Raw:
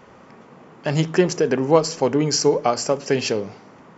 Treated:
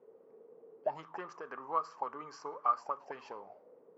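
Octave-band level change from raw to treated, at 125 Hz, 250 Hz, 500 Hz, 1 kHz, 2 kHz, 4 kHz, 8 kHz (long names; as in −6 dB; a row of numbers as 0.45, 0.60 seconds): −37.5 dB, −32.0 dB, −23.5 dB, −8.5 dB, −20.5 dB, −32.5 dB, can't be measured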